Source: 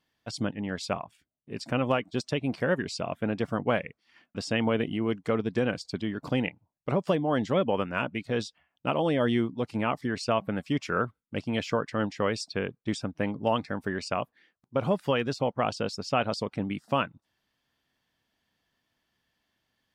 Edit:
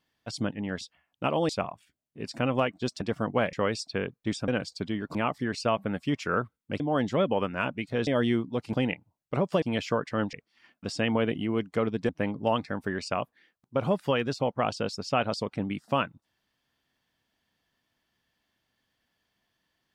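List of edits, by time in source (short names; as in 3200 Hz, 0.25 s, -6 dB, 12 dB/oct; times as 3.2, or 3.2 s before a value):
2.33–3.33 cut
3.85–5.61 swap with 12.14–13.09
6.28–7.17 swap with 9.78–11.43
8.44–9.12 move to 0.81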